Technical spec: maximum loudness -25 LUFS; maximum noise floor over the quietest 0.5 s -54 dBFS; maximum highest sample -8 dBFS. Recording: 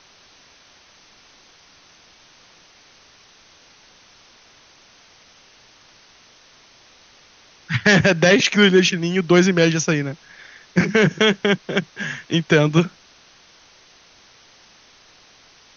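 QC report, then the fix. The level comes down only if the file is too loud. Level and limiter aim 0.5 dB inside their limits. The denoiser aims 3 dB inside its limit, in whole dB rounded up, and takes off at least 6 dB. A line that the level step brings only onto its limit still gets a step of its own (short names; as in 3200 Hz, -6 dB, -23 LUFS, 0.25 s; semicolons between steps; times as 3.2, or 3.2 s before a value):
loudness -17.5 LUFS: fail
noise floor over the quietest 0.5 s -51 dBFS: fail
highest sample -3.0 dBFS: fail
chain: gain -8 dB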